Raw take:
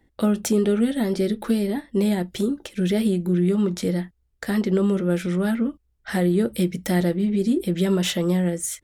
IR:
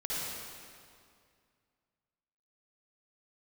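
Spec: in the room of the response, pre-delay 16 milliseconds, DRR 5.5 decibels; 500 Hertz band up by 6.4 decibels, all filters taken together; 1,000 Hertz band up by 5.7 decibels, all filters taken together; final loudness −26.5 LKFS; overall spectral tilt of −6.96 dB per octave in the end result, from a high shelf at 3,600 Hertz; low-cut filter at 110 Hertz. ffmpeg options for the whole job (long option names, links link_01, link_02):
-filter_complex "[0:a]highpass=110,equalizer=frequency=500:width_type=o:gain=8,equalizer=frequency=1000:width_type=o:gain=5,highshelf=frequency=3600:gain=-7,asplit=2[link_01][link_02];[1:a]atrim=start_sample=2205,adelay=16[link_03];[link_02][link_03]afir=irnorm=-1:irlink=0,volume=-11dB[link_04];[link_01][link_04]amix=inputs=2:normalize=0,volume=-7.5dB"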